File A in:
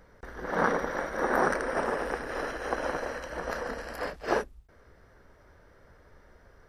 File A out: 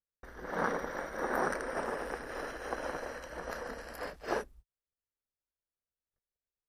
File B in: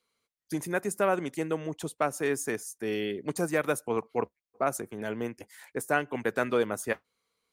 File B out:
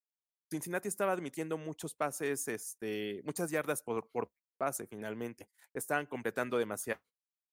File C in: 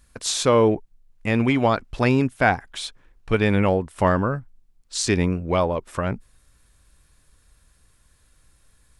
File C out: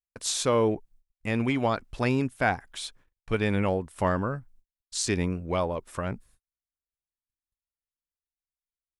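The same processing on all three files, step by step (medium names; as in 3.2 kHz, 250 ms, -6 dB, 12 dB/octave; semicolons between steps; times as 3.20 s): gate -48 dBFS, range -41 dB; treble shelf 8.5 kHz +7.5 dB; trim -6.5 dB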